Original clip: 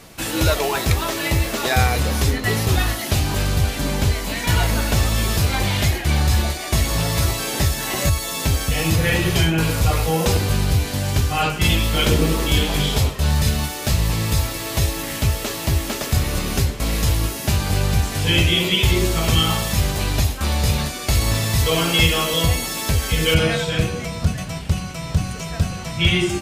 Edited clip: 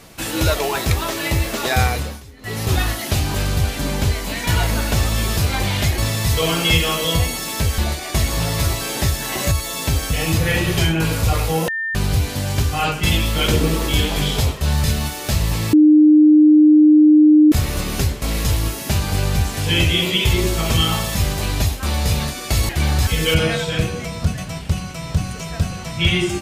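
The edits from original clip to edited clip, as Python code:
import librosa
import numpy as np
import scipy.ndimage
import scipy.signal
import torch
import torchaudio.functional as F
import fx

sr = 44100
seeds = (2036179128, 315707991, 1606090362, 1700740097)

y = fx.edit(x, sr, fx.fade_down_up(start_s=1.87, length_s=0.85, db=-22.5, fade_s=0.35),
    fx.swap(start_s=5.98, length_s=0.38, other_s=21.27, other_length_s=1.8),
    fx.bleep(start_s=10.26, length_s=0.27, hz=1800.0, db=-20.5),
    fx.bleep(start_s=14.31, length_s=1.79, hz=304.0, db=-6.5), tone=tone)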